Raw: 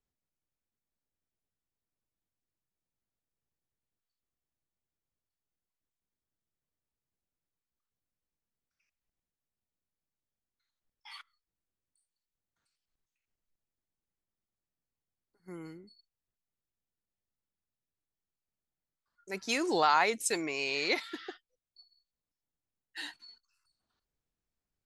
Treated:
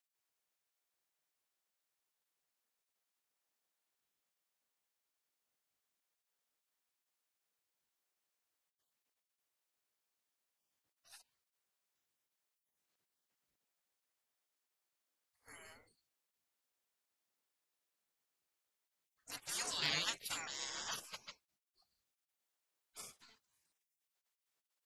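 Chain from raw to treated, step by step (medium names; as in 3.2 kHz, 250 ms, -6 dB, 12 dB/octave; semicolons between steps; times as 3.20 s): spectral gate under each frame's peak -25 dB weak; saturation -29.5 dBFS, distortion -23 dB; trim +7 dB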